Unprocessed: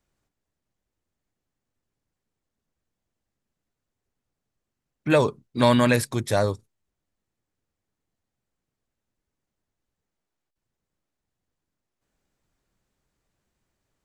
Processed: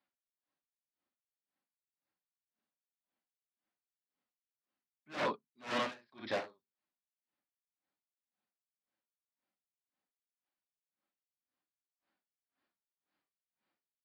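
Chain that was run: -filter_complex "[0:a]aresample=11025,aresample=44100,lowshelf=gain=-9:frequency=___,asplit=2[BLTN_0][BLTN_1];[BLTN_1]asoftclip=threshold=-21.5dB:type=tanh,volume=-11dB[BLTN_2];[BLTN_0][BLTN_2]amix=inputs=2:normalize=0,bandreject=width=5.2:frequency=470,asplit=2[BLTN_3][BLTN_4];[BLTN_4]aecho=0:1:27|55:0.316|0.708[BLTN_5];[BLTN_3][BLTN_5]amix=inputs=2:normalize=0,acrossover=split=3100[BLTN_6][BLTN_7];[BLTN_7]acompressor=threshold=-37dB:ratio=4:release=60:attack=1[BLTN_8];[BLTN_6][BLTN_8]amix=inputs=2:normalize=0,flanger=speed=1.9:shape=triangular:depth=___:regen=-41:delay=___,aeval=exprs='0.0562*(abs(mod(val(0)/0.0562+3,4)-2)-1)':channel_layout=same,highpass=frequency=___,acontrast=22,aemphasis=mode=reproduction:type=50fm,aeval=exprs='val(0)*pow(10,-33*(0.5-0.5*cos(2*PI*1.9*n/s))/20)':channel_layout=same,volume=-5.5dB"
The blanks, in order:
410, 1.3, 3.7, 200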